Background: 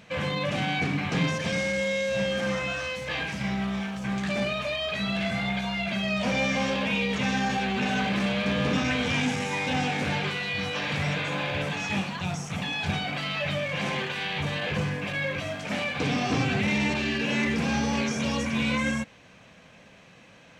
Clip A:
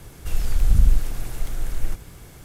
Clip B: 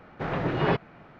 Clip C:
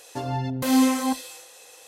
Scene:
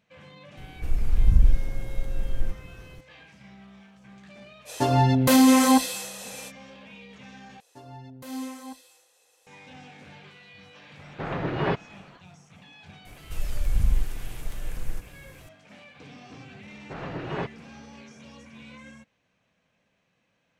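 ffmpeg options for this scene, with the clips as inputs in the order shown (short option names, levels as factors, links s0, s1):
-filter_complex "[1:a]asplit=2[s0][s1];[3:a]asplit=2[s2][s3];[2:a]asplit=2[s4][s5];[0:a]volume=0.1[s6];[s0]tiltshelf=f=1200:g=7[s7];[s2]alimiter=level_in=6.31:limit=0.891:release=50:level=0:latency=1[s8];[s6]asplit=2[s9][s10];[s9]atrim=end=7.604[s11];[s3]atrim=end=1.87,asetpts=PTS-STARTPTS,volume=0.158[s12];[s10]atrim=start=9.466[s13];[s7]atrim=end=2.44,asetpts=PTS-STARTPTS,volume=0.376,afade=t=in:d=0.004:c=hsin,afade=t=out:st=2.436:d=0.004:c=hsin,adelay=570[s14];[s8]atrim=end=1.87,asetpts=PTS-STARTPTS,volume=0.398,afade=t=in:d=0.05,afade=t=out:st=1.82:d=0.05,adelay=205065S[s15];[s4]atrim=end=1.19,asetpts=PTS-STARTPTS,volume=0.841,afade=t=in:d=0.004:c=hsin,afade=t=out:st=1.186:d=0.004:c=hsin,adelay=10990[s16];[s1]atrim=end=2.44,asetpts=PTS-STARTPTS,volume=0.473,afade=t=in:d=0.004:c=hsin,afade=t=out:st=2.436:d=0.004:c=hsin,adelay=13050[s17];[s5]atrim=end=1.19,asetpts=PTS-STARTPTS,volume=0.447,afade=t=in:d=0.004:c=hsin,afade=t=out:st=1.186:d=0.004:c=hsin,adelay=16700[s18];[s11][s12]acrossfade=d=0.004:c1=hsin:c2=hsin[s19];[s19][s13]acrossfade=d=0.004:c1=hsin:c2=hsin[s20];[s20][s14][s15][s16][s17][s18]amix=inputs=6:normalize=0"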